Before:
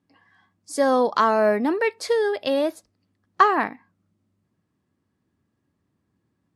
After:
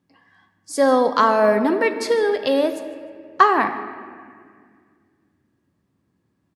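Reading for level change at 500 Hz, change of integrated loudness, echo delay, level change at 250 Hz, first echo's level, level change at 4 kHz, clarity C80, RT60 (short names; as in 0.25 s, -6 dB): +3.0 dB, +3.0 dB, 0.152 s, +3.5 dB, -20.0 dB, +3.0 dB, 10.5 dB, 2.0 s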